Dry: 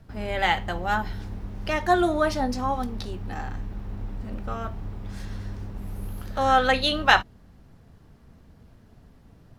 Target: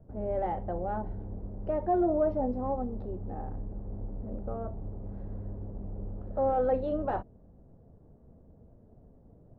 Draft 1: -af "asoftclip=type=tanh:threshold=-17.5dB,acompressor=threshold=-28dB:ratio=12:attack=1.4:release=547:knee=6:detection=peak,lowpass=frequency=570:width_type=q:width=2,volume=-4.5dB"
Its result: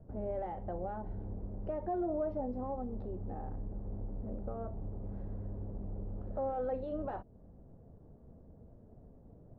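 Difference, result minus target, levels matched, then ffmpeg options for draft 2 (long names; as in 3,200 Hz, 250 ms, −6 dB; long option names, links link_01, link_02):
downward compressor: peak gain reduction +9.5 dB
-af "asoftclip=type=tanh:threshold=-17.5dB,lowpass=frequency=570:width_type=q:width=2,volume=-4.5dB"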